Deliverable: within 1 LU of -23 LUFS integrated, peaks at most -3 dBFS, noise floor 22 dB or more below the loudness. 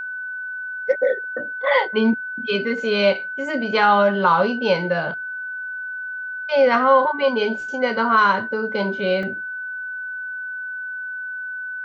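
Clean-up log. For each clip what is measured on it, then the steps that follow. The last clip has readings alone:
dropouts 1; longest dropout 2.5 ms; steady tone 1.5 kHz; tone level -27 dBFS; loudness -21.0 LUFS; peak level -4.5 dBFS; loudness target -23.0 LUFS
-> interpolate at 9.23 s, 2.5 ms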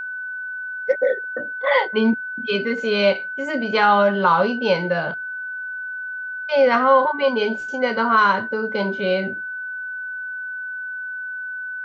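dropouts 0; steady tone 1.5 kHz; tone level -27 dBFS
-> band-stop 1.5 kHz, Q 30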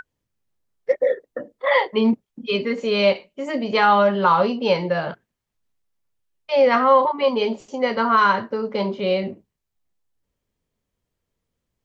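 steady tone not found; loudness -20.0 LUFS; peak level -5.0 dBFS; loudness target -23.0 LUFS
-> trim -3 dB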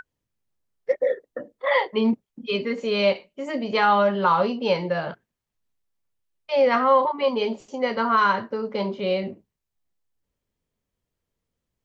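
loudness -23.0 LUFS; peak level -8.0 dBFS; noise floor -83 dBFS

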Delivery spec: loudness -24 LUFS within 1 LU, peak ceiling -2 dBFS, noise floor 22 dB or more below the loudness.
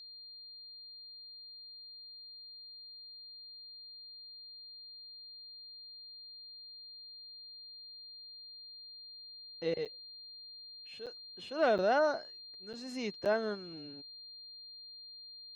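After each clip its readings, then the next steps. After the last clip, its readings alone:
dropouts 5; longest dropout 7.5 ms; steady tone 4.2 kHz; tone level -48 dBFS; loudness -40.0 LUFS; peak level -19.0 dBFS; loudness target -24.0 LUFS
-> interpolate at 9.85/11.06/11.78/12.73/13.25 s, 7.5 ms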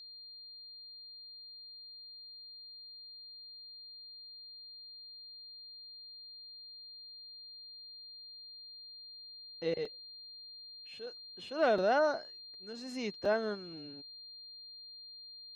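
dropouts 0; steady tone 4.2 kHz; tone level -48 dBFS
-> band-stop 4.2 kHz, Q 30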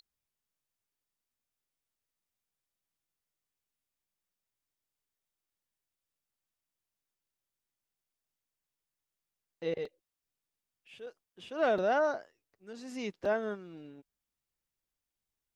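steady tone not found; loudness -33.5 LUFS; peak level -18.5 dBFS; loudness target -24.0 LUFS
-> trim +9.5 dB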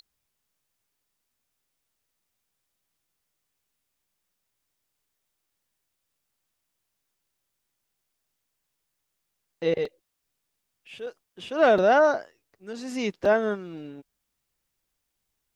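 loudness -24.0 LUFS; peak level -9.0 dBFS; noise floor -80 dBFS

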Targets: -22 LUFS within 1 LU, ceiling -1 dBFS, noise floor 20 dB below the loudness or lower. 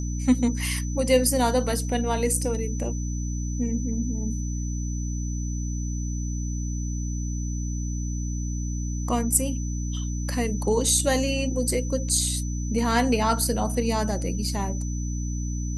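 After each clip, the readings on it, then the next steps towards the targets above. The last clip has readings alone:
hum 60 Hz; highest harmonic 300 Hz; hum level -26 dBFS; steady tone 6 kHz; tone level -39 dBFS; loudness -26.0 LUFS; peak level -4.0 dBFS; loudness target -22.0 LUFS
-> de-hum 60 Hz, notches 5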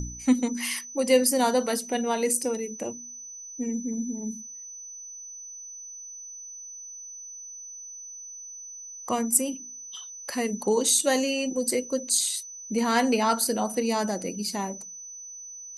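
hum not found; steady tone 6 kHz; tone level -39 dBFS
-> band-stop 6 kHz, Q 30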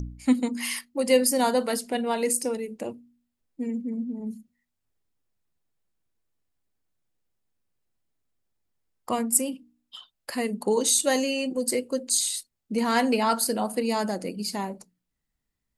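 steady tone not found; loudness -26.0 LUFS; peak level -4.0 dBFS; loudness target -22.0 LUFS
-> trim +4 dB; peak limiter -1 dBFS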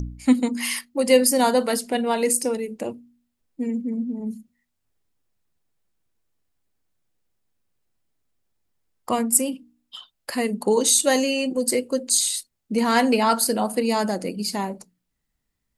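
loudness -22.0 LUFS; peak level -1.0 dBFS; noise floor -77 dBFS

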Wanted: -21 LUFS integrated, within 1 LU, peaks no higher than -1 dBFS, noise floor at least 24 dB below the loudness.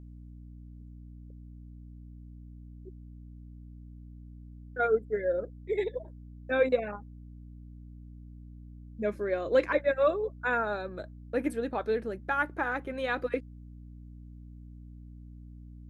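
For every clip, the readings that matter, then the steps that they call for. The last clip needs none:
hum 60 Hz; highest harmonic 300 Hz; hum level -44 dBFS; loudness -30.5 LUFS; peak level -13.5 dBFS; loudness target -21.0 LUFS
-> de-hum 60 Hz, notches 5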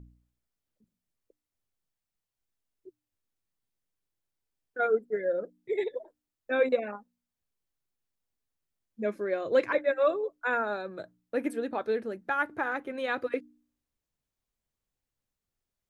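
hum not found; loudness -30.5 LUFS; peak level -13.5 dBFS; loudness target -21.0 LUFS
-> trim +9.5 dB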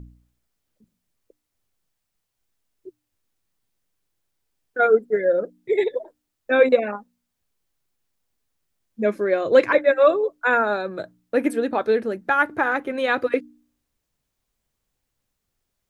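loudness -21.0 LUFS; peak level -4.0 dBFS; noise floor -79 dBFS

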